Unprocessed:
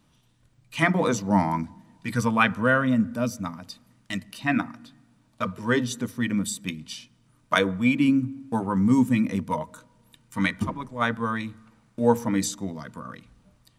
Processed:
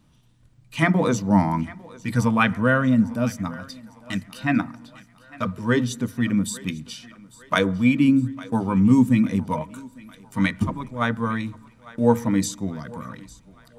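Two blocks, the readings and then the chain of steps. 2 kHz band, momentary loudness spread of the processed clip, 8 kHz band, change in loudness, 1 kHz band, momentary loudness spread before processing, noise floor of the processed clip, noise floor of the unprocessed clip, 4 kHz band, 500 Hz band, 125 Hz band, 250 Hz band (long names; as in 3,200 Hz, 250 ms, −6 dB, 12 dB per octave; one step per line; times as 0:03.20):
0.0 dB, 18 LU, 0.0 dB, +3.0 dB, +0.5 dB, 17 LU, −55 dBFS, −63 dBFS, 0.0 dB, +1.5 dB, +5.0 dB, +3.5 dB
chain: low-shelf EQ 250 Hz +7 dB
feedback echo with a high-pass in the loop 852 ms, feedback 55%, high-pass 420 Hz, level −19 dB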